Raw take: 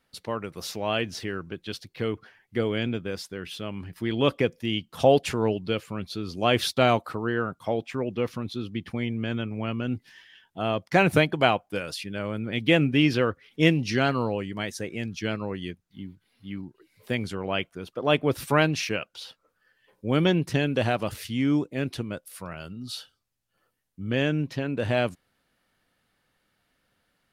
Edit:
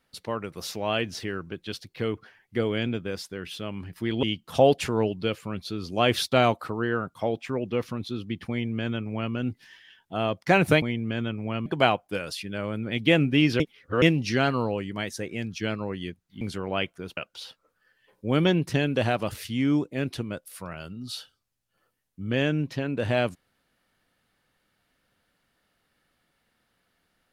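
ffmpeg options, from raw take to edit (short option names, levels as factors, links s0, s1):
-filter_complex "[0:a]asplit=8[s0][s1][s2][s3][s4][s5][s6][s7];[s0]atrim=end=4.232[s8];[s1]atrim=start=4.678:end=11.272[s9];[s2]atrim=start=8.948:end=9.792[s10];[s3]atrim=start=11.268:end=13.212[s11];[s4]atrim=start=13.208:end=13.632,asetpts=PTS-STARTPTS,areverse[s12];[s5]atrim=start=13.628:end=16.022[s13];[s6]atrim=start=17.178:end=17.942[s14];[s7]atrim=start=18.968[s15];[s8][s9]acrossfade=d=0.004:c1=hsin:c2=hsin[s16];[s16][s10]acrossfade=d=0.004:c1=hsin:c2=hsin[s17];[s17][s11]acrossfade=d=0.004:c1=hsin:c2=hsin[s18];[s18][s12]acrossfade=d=0.004:c1=hsin:c2=hsin[s19];[s19][s13]acrossfade=d=0.004:c1=hsin:c2=hsin[s20];[s20][s14]acrossfade=d=0.004:c1=hsin:c2=hsin[s21];[s21][s15]acrossfade=d=0.004:c1=hsin:c2=hsin"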